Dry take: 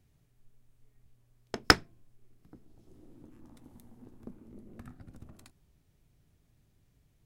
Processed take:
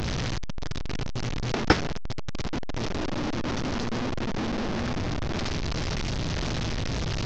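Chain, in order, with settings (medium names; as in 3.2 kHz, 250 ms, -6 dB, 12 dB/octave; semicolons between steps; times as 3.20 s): one-bit delta coder 32 kbps, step -28.5 dBFS; trim +6.5 dB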